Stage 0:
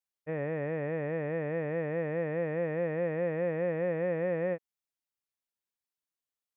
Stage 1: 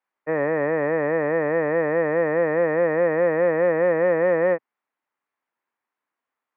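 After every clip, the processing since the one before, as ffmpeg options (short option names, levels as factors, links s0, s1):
-filter_complex "[0:a]equalizer=f=125:t=o:w=1:g=7,equalizer=f=250:t=o:w=1:g=10,equalizer=f=1000:t=o:w=1:g=8,equalizer=f=2000:t=o:w=1:g=6,asplit=2[s0][s1];[s1]asoftclip=type=tanh:threshold=0.0355,volume=0.316[s2];[s0][s2]amix=inputs=2:normalize=0,acrossover=split=330 2300:gain=0.126 1 0.112[s3][s4][s5];[s3][s4][s5]amix=inputs=3:normalize=0,volume=2.37"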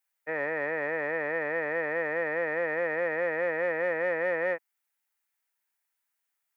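-af "lowshelf=f=400:g=-10,bandreject=f=1100:w=5.2,crystalizer=i=7:c=0,volume=0.422"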